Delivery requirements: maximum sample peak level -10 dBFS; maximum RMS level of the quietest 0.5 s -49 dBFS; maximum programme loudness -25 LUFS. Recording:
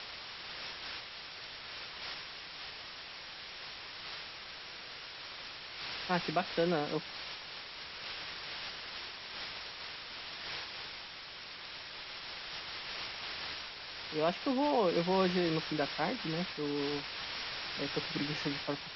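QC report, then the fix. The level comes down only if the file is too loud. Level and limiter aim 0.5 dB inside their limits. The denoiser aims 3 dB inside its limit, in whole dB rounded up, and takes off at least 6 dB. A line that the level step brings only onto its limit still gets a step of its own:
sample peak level -17.5 dBFS: OK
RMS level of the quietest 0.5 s -47 dBFS: fail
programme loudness -37.5 LUFS: OK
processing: denoiser 6 dB, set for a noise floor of -47 dBFS

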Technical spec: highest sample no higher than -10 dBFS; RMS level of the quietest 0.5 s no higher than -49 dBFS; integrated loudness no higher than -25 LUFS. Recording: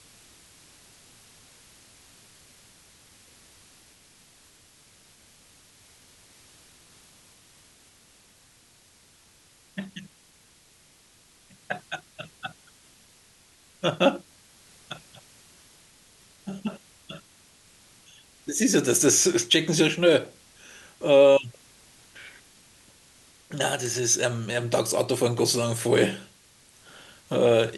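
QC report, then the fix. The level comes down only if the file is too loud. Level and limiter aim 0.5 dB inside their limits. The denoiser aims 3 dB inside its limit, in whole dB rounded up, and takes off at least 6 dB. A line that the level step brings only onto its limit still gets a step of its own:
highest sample -6.5 dBFS: fail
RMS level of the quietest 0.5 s -58 dBFS: OK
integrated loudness -23.0 LUFS: fail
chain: gain -2.5 dB; limiter -10.5 dBFS

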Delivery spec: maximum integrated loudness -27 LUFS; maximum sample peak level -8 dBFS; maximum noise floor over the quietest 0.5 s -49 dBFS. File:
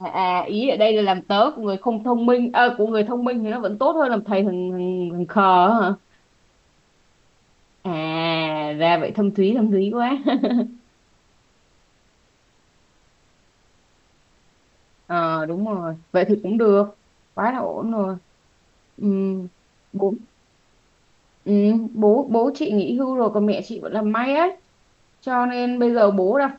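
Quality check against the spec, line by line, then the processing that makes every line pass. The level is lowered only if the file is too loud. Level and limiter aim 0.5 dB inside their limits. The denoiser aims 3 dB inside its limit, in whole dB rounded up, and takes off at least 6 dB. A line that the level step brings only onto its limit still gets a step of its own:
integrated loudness -20.5 LUFS: fail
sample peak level -4.5 dBFS: fail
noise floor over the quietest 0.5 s -60 dBFS: OK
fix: gain -7 dB

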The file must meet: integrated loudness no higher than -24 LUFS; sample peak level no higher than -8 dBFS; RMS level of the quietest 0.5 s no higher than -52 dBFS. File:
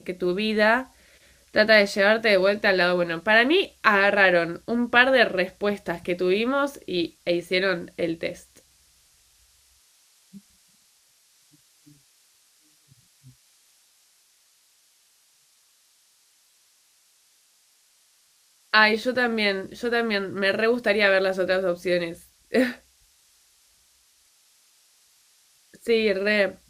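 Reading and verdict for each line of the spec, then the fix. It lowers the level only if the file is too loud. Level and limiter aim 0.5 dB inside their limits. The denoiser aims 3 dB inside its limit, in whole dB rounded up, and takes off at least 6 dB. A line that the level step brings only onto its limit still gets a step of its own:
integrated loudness -22.0 LUFS: fail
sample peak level -2.0 dBFS: fail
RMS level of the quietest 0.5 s -62 dBFS: OK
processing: gain -2.5 dB; limiter -8.5 dBFS

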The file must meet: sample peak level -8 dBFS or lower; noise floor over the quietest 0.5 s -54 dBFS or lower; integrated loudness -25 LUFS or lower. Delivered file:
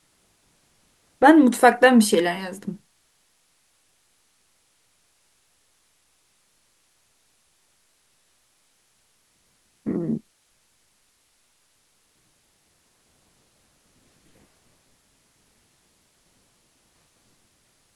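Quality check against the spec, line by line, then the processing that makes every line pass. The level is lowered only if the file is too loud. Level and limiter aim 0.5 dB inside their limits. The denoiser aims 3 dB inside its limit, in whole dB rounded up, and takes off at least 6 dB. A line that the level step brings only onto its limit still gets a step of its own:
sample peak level -2.5 dBFS: fail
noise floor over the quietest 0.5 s -65 dBFS: OK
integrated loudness -19.0 LUFS: fail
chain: gain -6.5 dB

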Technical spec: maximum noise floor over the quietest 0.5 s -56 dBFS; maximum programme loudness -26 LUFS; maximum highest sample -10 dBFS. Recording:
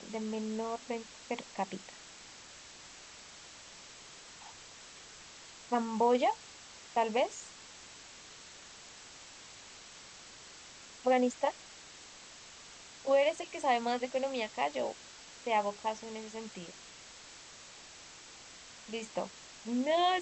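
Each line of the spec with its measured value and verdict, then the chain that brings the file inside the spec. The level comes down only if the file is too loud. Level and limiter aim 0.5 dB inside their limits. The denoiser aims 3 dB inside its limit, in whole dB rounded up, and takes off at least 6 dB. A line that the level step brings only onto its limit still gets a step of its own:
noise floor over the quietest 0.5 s -52 dBFS: fail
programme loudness -34.0 LUFS: OK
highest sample -17.5 dBFS: OK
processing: denoiser 7 dB, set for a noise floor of -52 dBFS

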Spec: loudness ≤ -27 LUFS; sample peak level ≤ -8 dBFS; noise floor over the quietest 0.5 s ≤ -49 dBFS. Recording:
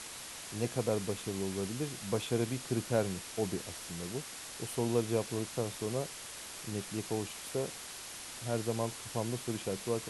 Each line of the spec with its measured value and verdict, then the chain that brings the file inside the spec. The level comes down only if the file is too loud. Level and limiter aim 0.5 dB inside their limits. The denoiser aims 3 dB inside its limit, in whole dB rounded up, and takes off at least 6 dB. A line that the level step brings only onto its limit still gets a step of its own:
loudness -36.0 LUFS: OK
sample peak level -17.0 dBFS: OK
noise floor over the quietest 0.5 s -46 dBFS: fail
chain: denoiser 6 dB, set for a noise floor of -46 dBFS

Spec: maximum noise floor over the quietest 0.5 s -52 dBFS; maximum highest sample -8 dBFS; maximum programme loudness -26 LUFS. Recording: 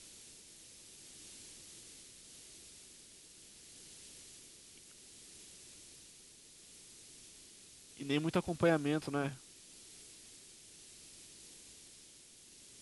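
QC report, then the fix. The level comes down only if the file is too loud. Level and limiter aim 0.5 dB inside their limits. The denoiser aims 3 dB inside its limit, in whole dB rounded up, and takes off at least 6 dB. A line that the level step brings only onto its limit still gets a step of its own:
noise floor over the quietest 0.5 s -59 dBFS: OK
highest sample -18.5 dBFS: OK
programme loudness -40.5 LUFS: OK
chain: none

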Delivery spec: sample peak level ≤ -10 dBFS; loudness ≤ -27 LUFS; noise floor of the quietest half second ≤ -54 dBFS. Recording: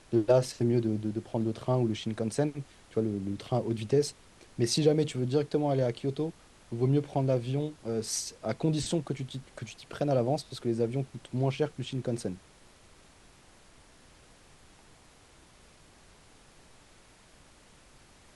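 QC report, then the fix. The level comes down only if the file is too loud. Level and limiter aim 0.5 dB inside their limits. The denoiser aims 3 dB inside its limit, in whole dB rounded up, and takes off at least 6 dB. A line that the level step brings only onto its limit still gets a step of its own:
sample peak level -11.5 dBFS: OK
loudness -30.5 LUFS: OK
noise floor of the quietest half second -58 dBFS: OK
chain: none

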